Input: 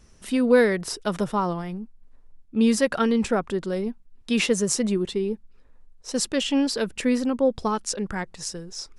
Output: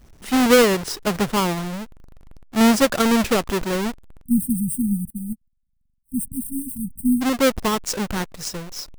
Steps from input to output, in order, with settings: half-waves squared off; 4.23–7.22 spectral delete 270–8100 Hz; 5.1–6.12 upward expander 2.5:1, over -40 dBFS

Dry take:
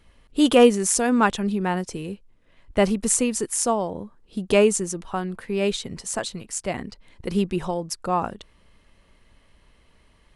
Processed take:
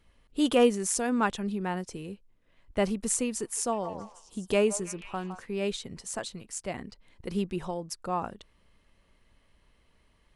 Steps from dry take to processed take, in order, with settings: 3.24–5.46 delay with a stepping band-pass 0.161 s, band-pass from 940 Hz, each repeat 0.7 oct, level -7.5 dB; gain -7.5 dB

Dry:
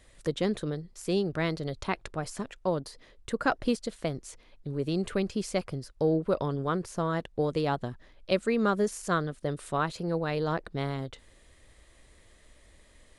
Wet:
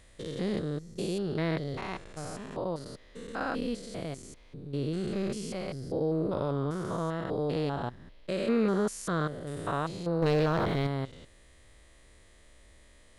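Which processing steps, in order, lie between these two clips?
stepped spectrum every 0.2 s; 10.22–10.87 sample leveller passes 2; gain +1.5 dB

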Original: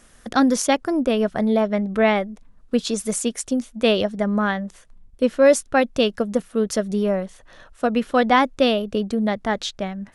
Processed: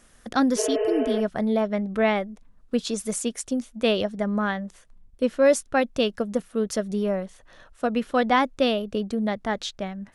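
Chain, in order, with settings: spectral repair 0.6–1.18, 390–3100 Hz after; gain -4 dB

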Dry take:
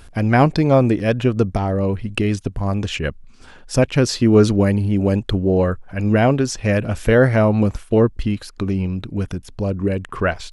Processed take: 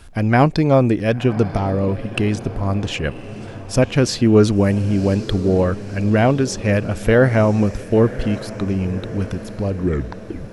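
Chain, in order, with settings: tape stop at the end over 0.73 s; diffused feedback echo 1.066 s, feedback 56%, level -15 dB; added noise brown -52 dBFS

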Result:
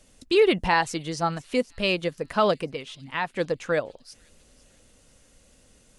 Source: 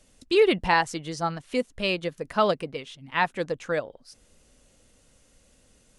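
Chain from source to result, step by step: in parallel at 0 dB: limiter -16 dBFS, peak gain reduction 8 dB; 2.7–3.37 on the sum: compressor 1.5:1, threshold -28 dBFS, peak gain reduction 5.5 dB; thin delay 0.502 s, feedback 47%, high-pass 4600 Hz, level -17 dB; gain -3.5 dB

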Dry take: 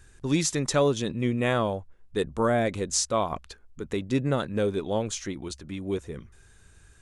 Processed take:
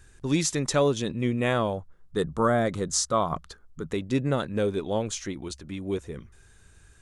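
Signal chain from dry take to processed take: 1.77–3.92 thirty-one-band EQ 160 Hz +9 dB, 1250 Hz +7 dB, 2500 Hz -9 dB

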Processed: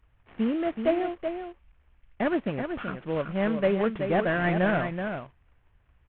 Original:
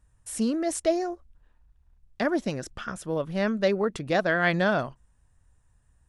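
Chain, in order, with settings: CVSD 16 kbps; echo 0.378 s -7 dB

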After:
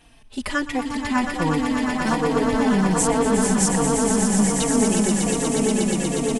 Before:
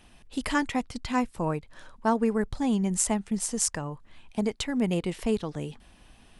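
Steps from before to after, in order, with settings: 1.57–2.17 spectral whitening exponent 0.6; swelling echo 0.12 s, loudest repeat 8, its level -7 dB; endless flanger 3.8 ms -1.3 Hz; gain +6 dB

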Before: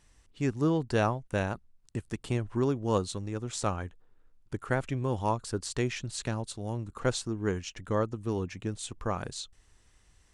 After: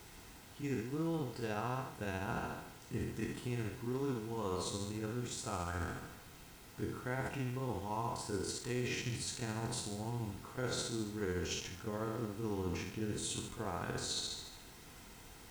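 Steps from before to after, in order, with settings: spectral trails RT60 0.66 s; reverse; compressor 6:1, threshold -39 dBFS, peak gain reduction 17.5 dB; reverse; granular stretch 1.5×, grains 0.144 s; added noise pink -59 dBFS; notch comb 580 Hz; gain +5 dB

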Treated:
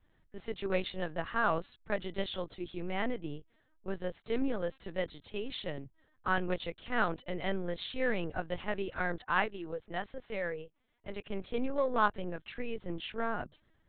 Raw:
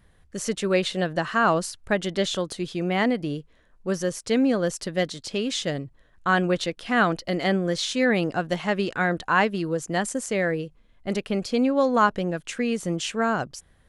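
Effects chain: added harmonics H 3 -19 dB, 6 -38 dB, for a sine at -7 dBFS; 9.18–11.22 low shelf 210 Hz -11 dB; LPC vocoder at 8 kHz pitch kept; gain -6.5 dB

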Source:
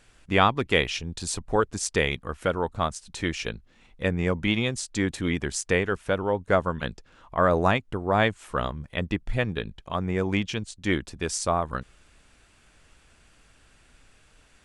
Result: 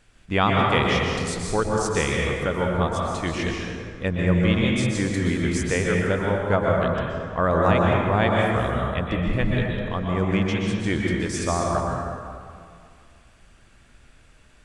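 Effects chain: tone controls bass +3 dB, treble -2 dB; plate-style reverb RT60 2.2 s, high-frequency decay 0.55×, pre-delay 0.11 s, DRR -2 dB; gain -1.5 dB

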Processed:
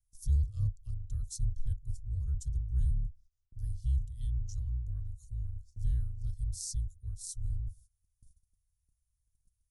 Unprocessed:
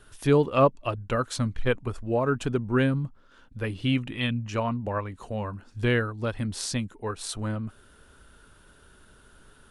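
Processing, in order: octaver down 2 oct, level +3 dB; elliptic band-stop 100–5900 Hz, stop band 40 dB; gate -49 dBFS, range -19 dB; gain -4.5 dB

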